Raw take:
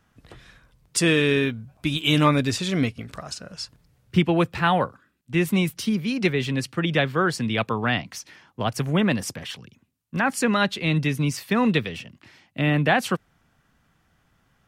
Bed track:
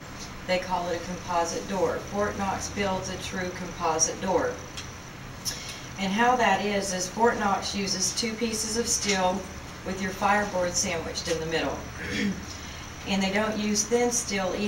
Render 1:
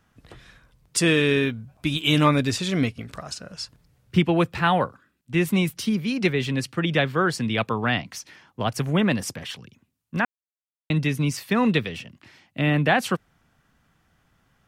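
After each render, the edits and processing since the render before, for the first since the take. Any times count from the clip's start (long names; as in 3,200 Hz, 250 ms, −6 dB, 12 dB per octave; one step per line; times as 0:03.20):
0:10.25–0:10.90: silence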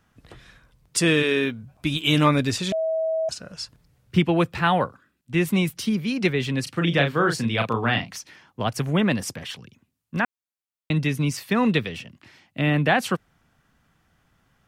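0:01.22–0:01.62: high-pass filter 380 Hz → 110 Hz
0:02.72–0:03.29: beep over 644 Hz −21 dBFS
0:06.63–0:08.17: double-tracking delay 35 ms −5.5 dB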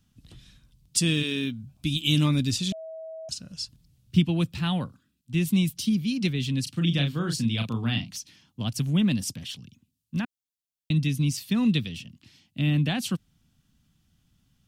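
flat-topped bell 900 Hz −15 dB 2.9 octaves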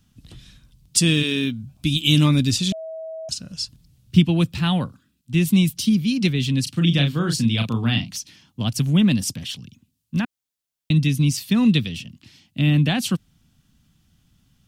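level +6 dB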